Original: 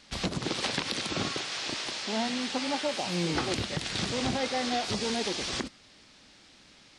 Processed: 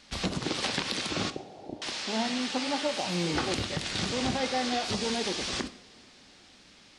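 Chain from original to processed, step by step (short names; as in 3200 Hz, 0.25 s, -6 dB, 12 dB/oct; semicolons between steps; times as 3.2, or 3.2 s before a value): 1.3–1.82 elliptic low-pass 800 Hz; two-slope reverb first 0.53 s, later 4.5 s, from -22 dB, DRR 10 dB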